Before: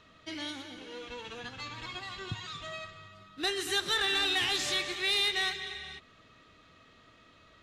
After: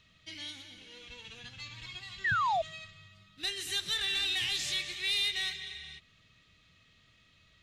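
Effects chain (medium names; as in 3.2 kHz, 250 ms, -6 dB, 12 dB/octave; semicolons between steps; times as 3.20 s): high-order bell 610 Hz -12 dB 3 oct; painted sound fall, 2.24–2.62 s, 620–2000 Hz -27 dBFS; trim -1.5 dB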